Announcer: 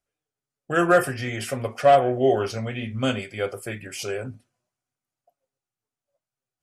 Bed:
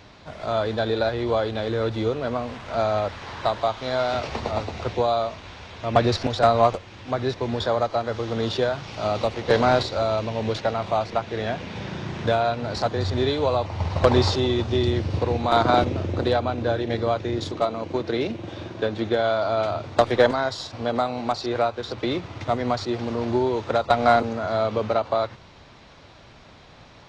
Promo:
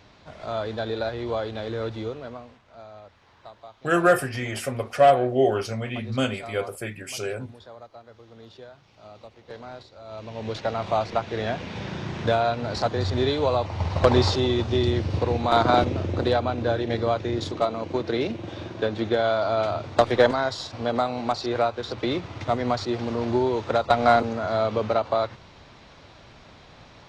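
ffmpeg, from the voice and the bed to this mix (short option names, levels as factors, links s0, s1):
-filter_complex "[0:a]adelay=3150,volume=0.944[s0];[1:a]volume=6.31,afade=t=out:st=1.84:d=0.78:silence=0.149624,afade=t=in:st=10.03:d=0.89:silence=0.0891251[s1];[s0][s1]amix=inputs=2:normalize=0"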